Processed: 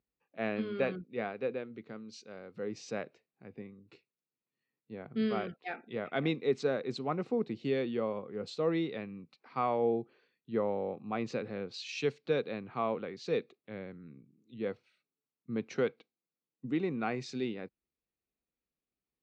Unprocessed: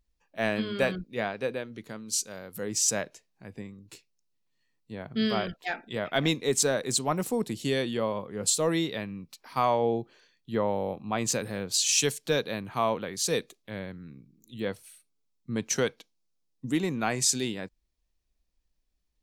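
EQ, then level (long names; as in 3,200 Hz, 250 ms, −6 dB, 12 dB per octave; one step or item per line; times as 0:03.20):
loudspeaker in its box 180–3,700 Hz, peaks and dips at 190 Hz −4 dB, 300 Hz −4 dB, 620 Hz −7 dB, 950 Hz −9 dB, 1,700 Hz −7 dB, 3,200 Hz −8 dB
high-shelf EQ 2,200 Hz −8 dB
0.0 dB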